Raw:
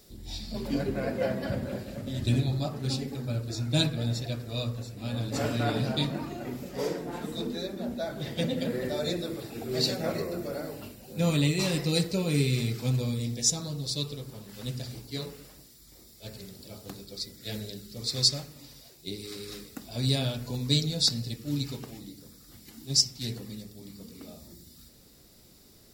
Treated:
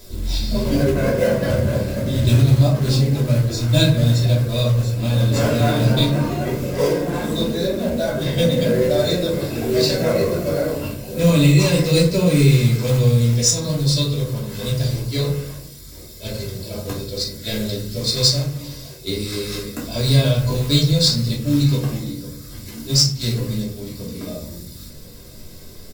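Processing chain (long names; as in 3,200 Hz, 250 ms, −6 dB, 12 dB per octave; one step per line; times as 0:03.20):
low-shelf EQ 460 Hz +2 dB
comb filter 1.9 ms, depth 41%
in parallel at +3 dB: downward compressor 16 to 1, threshold −32 dBFS, peak gain reduction 16.5 dB
on the sum: floating-point word with a short mantissa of 2 bits
convolution reverb, pre-delay 3 ms, DRR −4.5 dB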